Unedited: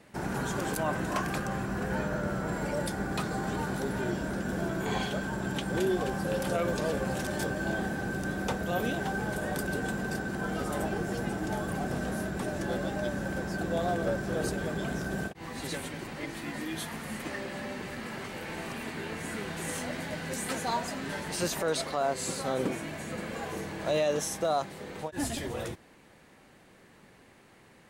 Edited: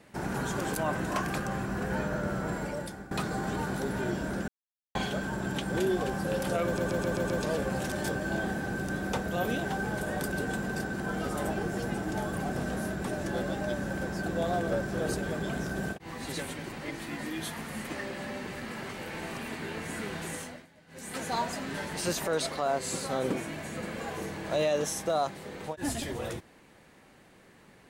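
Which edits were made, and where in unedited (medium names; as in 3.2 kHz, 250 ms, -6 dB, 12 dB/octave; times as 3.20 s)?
2.49–3.11 s: fade out, to -15.5 dB
4.48–4.95 s: mute
6.65 s: stutter 0.13 s, 6 plays
19.56–20.68 s: dip -22.5 dB, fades 0.46 s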